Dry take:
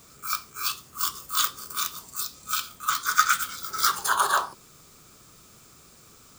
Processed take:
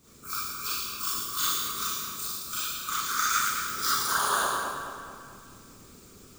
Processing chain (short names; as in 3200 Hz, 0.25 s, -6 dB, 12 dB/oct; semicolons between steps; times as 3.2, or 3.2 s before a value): resonant low shelf 510 Hz +6 dB, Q 1.5; Schroeder reverb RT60 1.1 s, combs from 28 ms, DRR -7.5 dB; harmonic-percussive split harmonic -11 dB; on a send: split-band echo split 2800 Hz, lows 0.217 s, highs 0.111 s, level -6 dB; on the sum: gain -6 dB